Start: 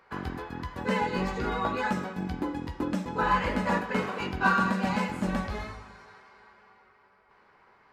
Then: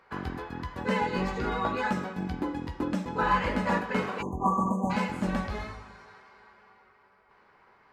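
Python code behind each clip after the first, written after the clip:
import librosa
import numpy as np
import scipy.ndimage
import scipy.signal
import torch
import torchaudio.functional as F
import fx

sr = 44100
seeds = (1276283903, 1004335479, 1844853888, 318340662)

y = fx.spec_erase(x, sr, start_s=4.22, length_s=0.68, low_hz=1200.0, high_hz=6100.0)
y = fx.high_shelf(y, sr, hz=8500.0, db=-4.0)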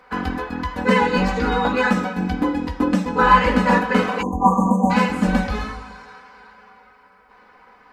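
y = x + 0.93 * np.pad(x, (int(4.0 * sr / 1000.0), 0))[:len(x)]
y = y * librosa.db_to_amplitude(7.5)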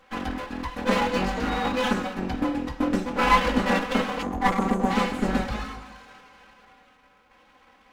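y = fx.lower_of_two(x, sr, delay_ms=3.7)
y = y * librosa.db_to_amplitude(-4.5)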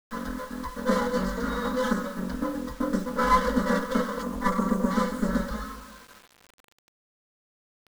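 y = fx.fixed_phaser(x, sr, hz=510.0, stages=8)
y = fx.quant_dither(y, sr, seeds[0], bits=8, dither='none')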